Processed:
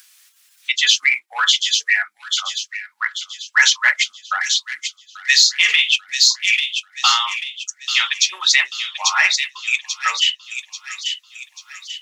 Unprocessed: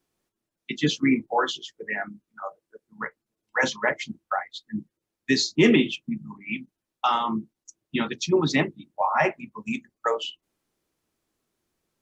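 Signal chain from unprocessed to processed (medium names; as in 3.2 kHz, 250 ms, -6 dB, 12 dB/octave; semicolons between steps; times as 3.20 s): in parallel at -8 dB: saturation -17.5 dBFS, distortion -12 dB; on the sum: Bessel high-pass 2.4 kHz, order 4; on a send: feedback echo behind a high-pass 839 ms, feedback 42%, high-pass 3.4 kHz, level -3 dB; on the sum: spectral noise reduction 11 dB; upward compressor, threshold -48 dBFS; loudness maximiser +17 dB; trim -1 dB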